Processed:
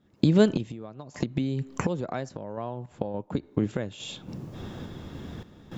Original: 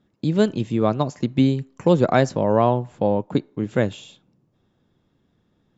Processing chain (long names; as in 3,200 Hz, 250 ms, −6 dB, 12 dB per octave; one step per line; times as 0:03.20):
camcorder AGC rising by 62 dB per second
parametric band 77 Hz +7 dB 0.28 octaves
0:00.65–0:02.91: downward compressor 6 to 1, threshold −23 dBFS, peak gain reduction 14 dB
sample-and-hold tremolo 3.5 Hz, depth 80%
level −1.5 dB